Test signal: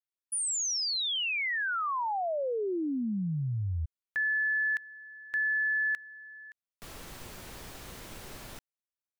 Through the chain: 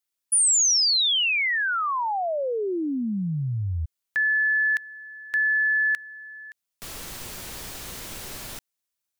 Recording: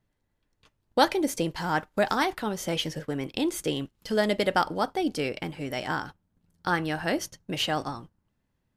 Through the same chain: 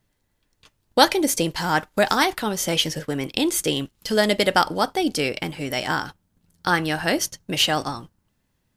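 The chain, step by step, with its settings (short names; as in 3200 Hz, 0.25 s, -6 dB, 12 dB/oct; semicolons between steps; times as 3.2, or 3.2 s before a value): high shelf 2800 Hz +8 dB; gain +4.5 dB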